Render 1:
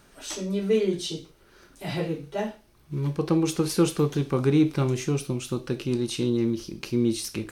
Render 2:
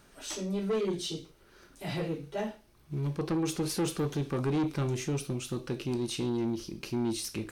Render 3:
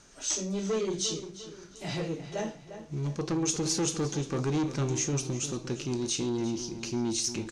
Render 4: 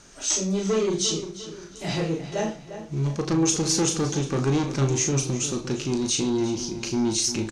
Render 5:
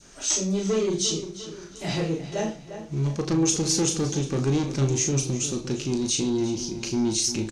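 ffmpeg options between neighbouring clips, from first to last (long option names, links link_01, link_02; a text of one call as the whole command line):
ffmpeg -i in.wav -af "asoftclip=type=tanh:threshold=-22dB,volume=-3dB" out.wav
ffmpeg -i in.wav -filter_complex "[0:a]lowpass=frequency=6600:width_type=q:width=4.7,asplit=2[link_01][link_02];[link_02]adelay=351,lowpass=frequency=3400:poles=1,volume=-11dB,asplit=2[link_03][link_04];[link_04]adelay=351,lowpass=frequency=3400:poles=1,volume=0.43,asplit=2[link_05][link_06];[link_06]adelay=351,lowpass=frequency=3400:poles=1,volume=0.43,asplit=2[link_07][link_08];[link_08]adelay=351,lowpass=frequency=3400:poles=1,volume=0.43[link_09];[link_01][link_03][link_05][link_07][link_09]amix=inputs=5:normalize=0" out.wav
ffmpeg -i in.wav -filter_complex "[0:a]asplit=2[link_01][link_02];[link_02]adelay=37,volume=-6.5dB[link_03];[link_01][link_03]amix=inputs=2:normalize=0,volume=5.5dB" out.wav
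ffmpeg -i in.wav -af "adynamicequalizer=threshold=0.00708:dfrequency=1200:dqfactor=0.8:tfrequency=1200:tqfactor=0.8:attack=5:release=100:ratio=0.375:range=3:mode=cutabove:tftype=bell" out.wav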